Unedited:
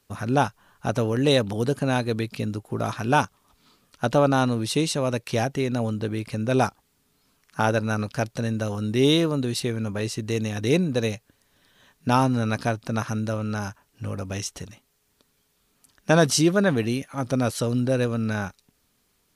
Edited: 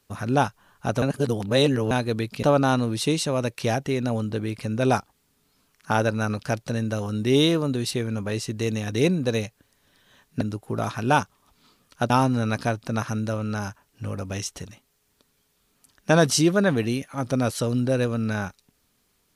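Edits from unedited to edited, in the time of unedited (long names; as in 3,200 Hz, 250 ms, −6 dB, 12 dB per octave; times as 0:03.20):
0:01.02–0:01.91: reverse
0:02.43–0:04.12: move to 0:12.10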